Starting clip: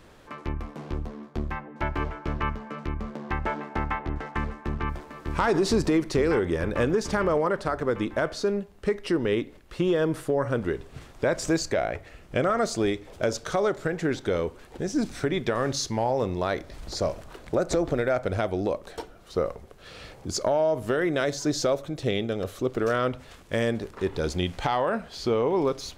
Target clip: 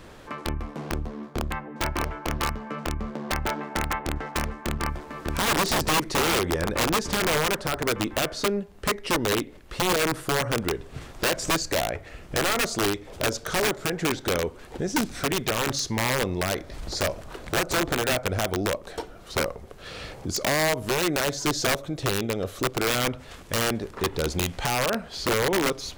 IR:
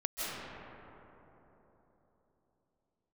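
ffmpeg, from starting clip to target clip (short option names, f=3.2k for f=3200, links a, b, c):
-filter_complex "[0:a]asplit=2[a][b];[b]acompressor=threshold=-38dB:ratio=8,volume=2dB[c];[a][c]amix=inputs=2:normalize=0,aeval=exprs='(mod(6.68*val(0)+1,2)-1)/6.68':c=same,volume=-1dB"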